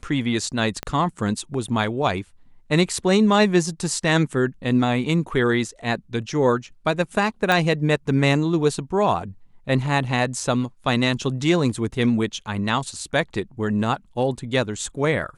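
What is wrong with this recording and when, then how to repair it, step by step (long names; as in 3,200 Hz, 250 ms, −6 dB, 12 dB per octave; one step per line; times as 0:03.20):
0:00.83: click −13 dBFS
0:07.52: click −7 dBFS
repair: click removal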